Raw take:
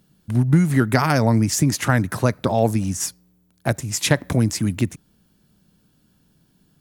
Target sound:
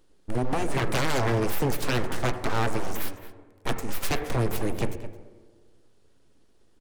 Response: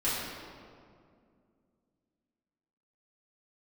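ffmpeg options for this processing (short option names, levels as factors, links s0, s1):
-filter_complex "[0:a]aresample=22050,aresample=44100,aeval=exprs='abs(val(0))':c=same,asplit=2[s0][s1];[s1]adelay=215.7,volume=0.178,highshelf=f=4000:g=-4.85[s2];[s0][s2]amix=inputs=2:normalize=0,asplit=2[s3][s4];[1:a]atrim=start_sample=2205,asetrate=79380,aresample=44100,lowpass=2800[s5];[s4][s5]afir=irnorm=-1:irlink=0,volume=0.211[s6];[s3][s6]amix=inputs=2:normalize=0,aeval=exprs='0.168*(abs(mod(val(0)/0.168+3,4)-2)-1)':c=same,volume=0.708"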